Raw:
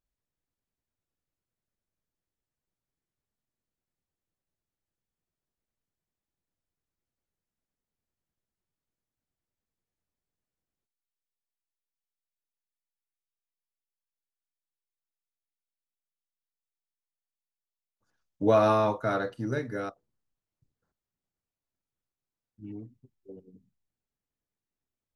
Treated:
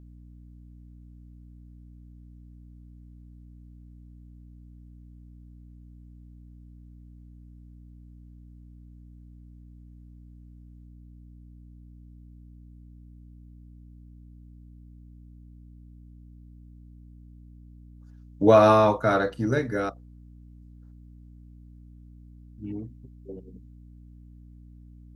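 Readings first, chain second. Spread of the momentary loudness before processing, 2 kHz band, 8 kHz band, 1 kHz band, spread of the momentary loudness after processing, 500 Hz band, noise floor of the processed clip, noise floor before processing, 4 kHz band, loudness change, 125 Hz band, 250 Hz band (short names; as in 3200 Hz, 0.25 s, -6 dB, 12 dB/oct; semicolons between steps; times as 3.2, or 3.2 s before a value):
22 LU, +6.0 dB, n/a, +6.0 dB, 21 LU, +6.0 dB, -49 dBFS, under -85 dBFS, +6.0 dB, +5.0 dB, +6.5 dB, +6.0 dB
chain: hum 60 Hz, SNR 16 dB; gain +6 dB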